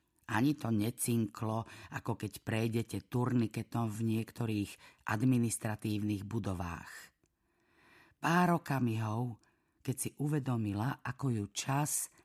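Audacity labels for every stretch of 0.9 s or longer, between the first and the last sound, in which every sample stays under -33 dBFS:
6.750000	8.240000	silence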